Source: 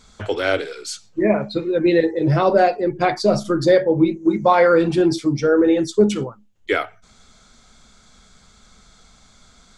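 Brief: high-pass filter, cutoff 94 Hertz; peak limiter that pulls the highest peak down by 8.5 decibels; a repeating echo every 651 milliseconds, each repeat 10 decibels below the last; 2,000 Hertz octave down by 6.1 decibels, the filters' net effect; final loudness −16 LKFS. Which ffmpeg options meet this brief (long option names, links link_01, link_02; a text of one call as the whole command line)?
ffmpeg -i in.wav -af "highpass=94,equalizer=frequency=2000:width_type=o:gain=-8.5,alimiter=limit=-12.5dB:level=0:latency=1,aecho=1:1:651|1302|1953|2604:0.316|0.101|0.0324|0.0104,volume=6dB" out.wav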